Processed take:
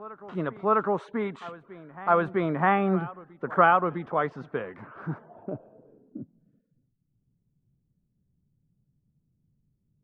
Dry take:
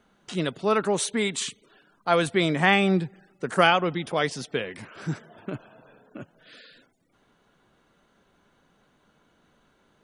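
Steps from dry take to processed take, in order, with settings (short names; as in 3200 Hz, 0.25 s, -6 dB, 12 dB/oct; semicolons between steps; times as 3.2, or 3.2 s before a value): reverse echo 0.656 s -19 dB; low-pass sweep 1200 Hz -> 130 Hz, 5.06–6.75; gain -3.5 dB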